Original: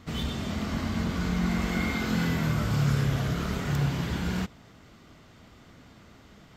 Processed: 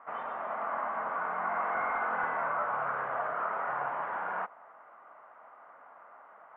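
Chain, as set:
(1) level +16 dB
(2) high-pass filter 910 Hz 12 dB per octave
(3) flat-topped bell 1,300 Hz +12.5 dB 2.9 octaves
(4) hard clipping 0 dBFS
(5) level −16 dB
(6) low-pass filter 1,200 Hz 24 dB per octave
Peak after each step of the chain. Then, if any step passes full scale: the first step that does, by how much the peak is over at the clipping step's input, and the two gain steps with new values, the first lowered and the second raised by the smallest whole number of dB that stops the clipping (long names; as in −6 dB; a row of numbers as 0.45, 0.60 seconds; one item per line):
+1.5, −7.5, +4.5, 0.0, −16.0, −20.5 dBFS
step 1, 4.5 dB
step 1 +11 dB, step 5 −11 dB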